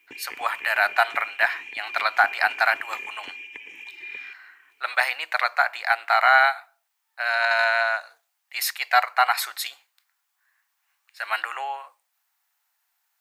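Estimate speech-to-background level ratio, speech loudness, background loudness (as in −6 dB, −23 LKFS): 14.0 dB, −22.5 LKFS, −36.5 LKFS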